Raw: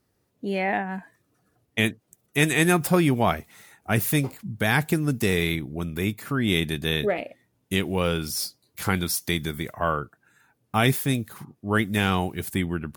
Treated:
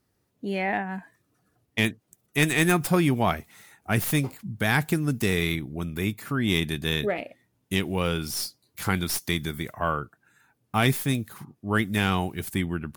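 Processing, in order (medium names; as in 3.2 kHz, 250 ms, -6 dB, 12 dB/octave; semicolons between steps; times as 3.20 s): tracing distortion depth 0.03 ms; peaking EQ 510 Hz -2.5 dB 0.85 oct; trim -1 dB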